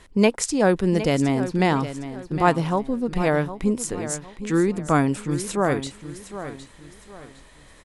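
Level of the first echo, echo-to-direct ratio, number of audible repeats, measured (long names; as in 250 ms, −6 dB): −12.0 dB, −11.5 dB, 3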